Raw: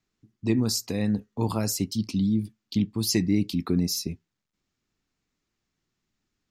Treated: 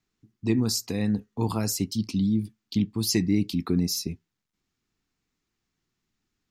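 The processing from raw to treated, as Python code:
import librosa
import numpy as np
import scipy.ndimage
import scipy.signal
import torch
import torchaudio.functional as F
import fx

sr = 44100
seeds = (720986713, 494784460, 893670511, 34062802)

y = fx.peak_eq(x, sr, hz=580.0, db=-7.0, octaves=0.21)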